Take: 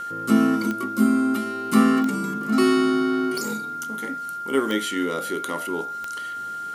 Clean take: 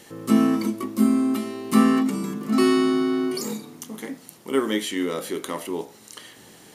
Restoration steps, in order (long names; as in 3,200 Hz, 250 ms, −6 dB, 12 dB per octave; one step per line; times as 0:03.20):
click removal
notch filter 1,400 Hz, Q 30